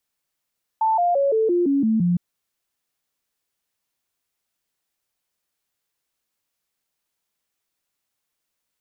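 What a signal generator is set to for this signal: stepped sine 884 Hz down, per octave 3, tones 8, 0.17 s, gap 0.00 s -16 dBFS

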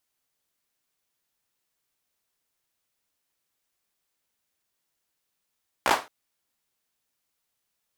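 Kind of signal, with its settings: hand clap length 0.22 s, apart 16 ms, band 830 Hz, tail 0.27 s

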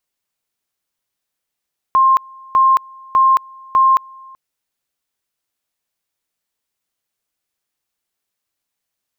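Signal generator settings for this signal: two-level tone 1.06 kHz -8 dBFS, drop 27.5 dB, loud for 0.22 s, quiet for 0.38 s, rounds 4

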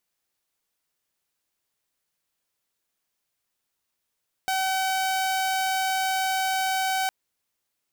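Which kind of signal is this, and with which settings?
tone saw 761 Hz -20.5 dBFS 2.61 s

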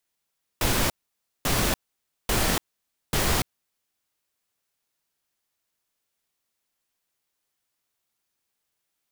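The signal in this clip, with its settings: noise bursts pink, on 0.29 s, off 0.55 s, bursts 4, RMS -23 dBFS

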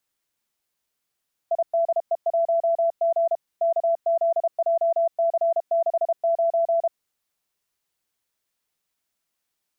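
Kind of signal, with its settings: Morse "IDE1G KZJC69" 32 wpm 670 Hz -17.5 dBFS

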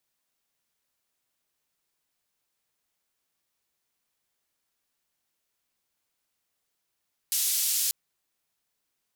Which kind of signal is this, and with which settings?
noise band 4.4–15 kHz, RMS -26.5 dBFS 0.59 s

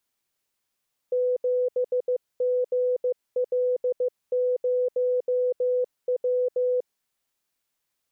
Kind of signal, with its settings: Morse "7GL0W" 15 wpm 499 Hz -20.5 dBFS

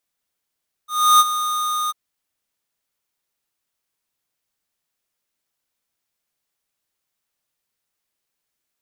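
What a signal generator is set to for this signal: ADSR square 1.23 kHz, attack 318 ms, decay 36 ms, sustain -12 dB, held 1.02 s, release 25 ms -10.5 dBFS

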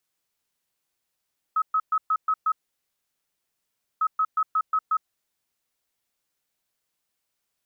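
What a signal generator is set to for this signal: beep pattern sine 1.28 kHz, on 0.06 s, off 0.12 s, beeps 6, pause 1.49 s, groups 2, -19 dBFS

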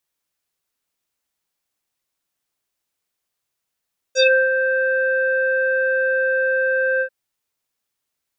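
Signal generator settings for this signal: synth note square C5 24 dB/octave, low-pass 1.8 kHz, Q 6.7, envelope 2 oct, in 0.16 s, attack 50 ms, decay 0.29 s, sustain -7 dB, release 0.08 s, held 2.86 s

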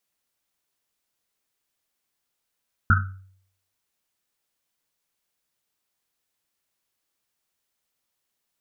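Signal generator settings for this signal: Risset drum, pitch 95 Hz, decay 0.64 s, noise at 1.4 kHz, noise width 280 Hz, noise 40%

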